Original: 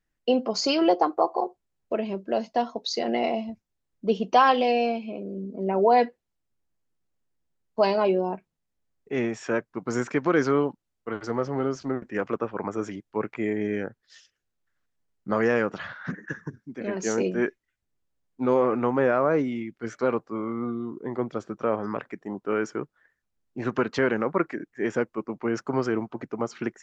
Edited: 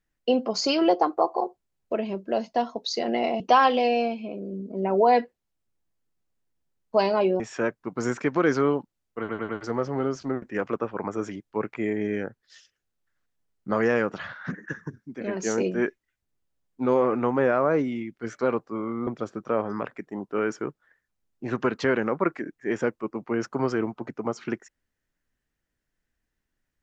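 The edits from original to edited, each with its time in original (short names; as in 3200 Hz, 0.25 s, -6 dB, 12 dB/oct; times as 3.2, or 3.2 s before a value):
3.4–4.24 cut
8.24–9.3 cut
11.09 stutter 0.10 s, 4 plays
20.67–21.21 cut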